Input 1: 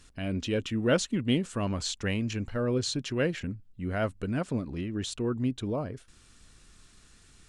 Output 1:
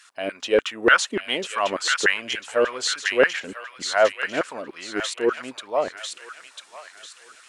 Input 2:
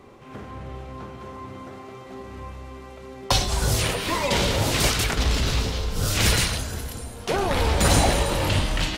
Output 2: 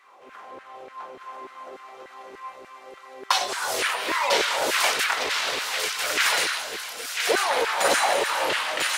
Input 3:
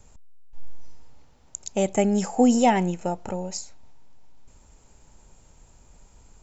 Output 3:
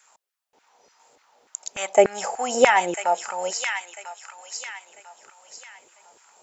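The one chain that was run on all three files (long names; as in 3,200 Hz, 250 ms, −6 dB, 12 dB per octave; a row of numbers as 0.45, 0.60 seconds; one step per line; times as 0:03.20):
auto-filter high-pass saw down 3.4 Hz 380–1,700 Hz
dynamic equaliser 1,700 Hz, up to +5 dB, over −38 dBFS, Q 0.84
delay with a high-pass on its return 996 ms, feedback 34%, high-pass 1,800 Hz, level −3 dB
loudness normalisation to −23 LKFS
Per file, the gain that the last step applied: +6.0, −3.5, +2.0 decibels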